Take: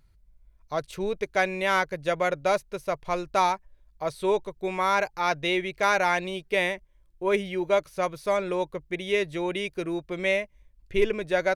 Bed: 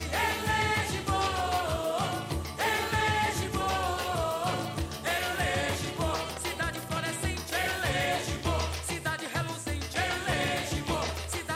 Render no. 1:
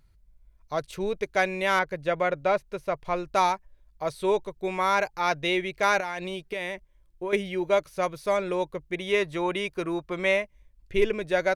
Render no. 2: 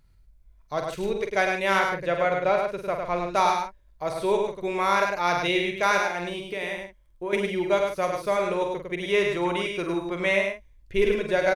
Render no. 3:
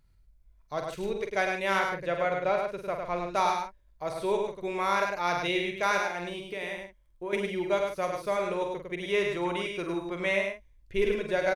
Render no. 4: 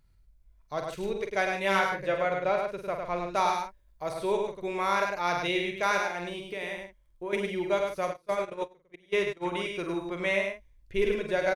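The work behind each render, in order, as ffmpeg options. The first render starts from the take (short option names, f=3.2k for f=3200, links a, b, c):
-filter_complex "[0:a]asettb=1/sr,asplit=3[a][b][c];[a]atrim=end=1.794[d];[b]atrim=start=1.79:end=3.33,asetpts=PTS-STARTPTS,afade=t=in:d=0.004:c=qsin,afade=t=out:st=1.536:d=0.004:c=qsin,acrossover=split=3600[e][f];[f]acompressor=threshold=-56dB:ratio=4:attack=1:release=60[g];[e][g]amix=inputs=2:normalize=0[h];[c]atrim=start=3.326[i];[d][h]acrossfade=d=0.004:c1=hsin:c2=qsin[j];[j][i]acrossfade=d=0.004:c1=qsin:c2=hsin,asettb=1/sr,asplit=3[k][l][m];[k]atrim=end=6.004[n];[l]atrim=start=6:end=7.33,asetpts=PTS-STARTPTS,afade=t=in:d=0.004:c=qsin,afade=t=out:st=1.326:d=0.004:c=qsin,acompressor=threshold=-27dB:ratio=12:attack=3.2:release=140:knee=1:detection=peak[o];[m]atrim=start=7.326[p];[n][o]acrossfade=d=0.004:c1=hsin:c2=qsin[q];[q][p]acrossfade=d=0.004:c1=qsin:c2=hsin,asettb=1/sr,asplit=3[r][s][t];[r]atrim=end=8.984[u];[s]atrim=start=8.98:end=10.42,asetpts=PTS-STARTPTS,afade=t=in:d=0.004:c=qsin,afade=t=out:st=1.436:d=0.004:c=qsin,equalizer=f=1.1k:t=o:w=0.77:g=8.5[v];[t]atrim=start=10.416[w];[u][v]acrossfade=d=0.004:c1=hsin:c2=qsin[x];[x][w]acrossfade=d=0.004:c1=qsin:c2=hsin"
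-filter_complex "[0:a]asplit=2[a][b];[b]adelay=46,volume=-7dB[c];[a][c]amix=inputs=2:normalize=0,aecho=1:1:103:0.596"
-af "volume=-4.5dB"
-filter_complex "[0:a]asettb=1/sr,asplit=3[a][b][c];[a]atrim=end=1.514[d];[b]atrim=start=1.51:end=2.18,asetpts=PTS-STARTPTS,afade=t=in:d=0.004:c=qsin,afade=t=out:st=0.666:d=0.004:c=qsin,asplit=2[e][f];[f]adelay=15,volume=-4dB[g];[e][g]amix=inputs=2:normalize=0,atrim=end_sample=29547[h];[c]atrim=start=2.176[i];[d][h]acrossfade=d=0.004:c1=hsin:c2=qsin[j];[j][i]acrossfade=d=0.004:c1=qsin:c2=hsin,asettb=1/sr,asplit=3[k][l][m];[k]atrim=end=3.534[n];[l]atrim=start=3.53:end=4.14,asetpts=PTS-STARTPTS,afade=t=in:d=0.004:c=qsin,afade=t=out:st=0.606:d=0.004:c=qsin,highshelf=f=8.2k:g=5[o];[m]atrim=start=4.136[p];[n][o]acrossfade=d=0.004:c1=hsin:c2=qsin[q];[q][p]acrossfade=d=0.004:c1=qsin:c2=hsin,asplit=3[r][s][t];[r]afade=t=out:st=8.12:d=0.02[u];[s]agate=range=-25dB:threshold=-30dB:ratio=16:release=100:detection=peak,afade=t=in:st=8.12:d=0.02,afade=t=out:st=9.51:d=0.02[v];[t]afade=t=in:st=9.51:d=0.02[w];[u][v][w]amix=inputs=3:normalize=0"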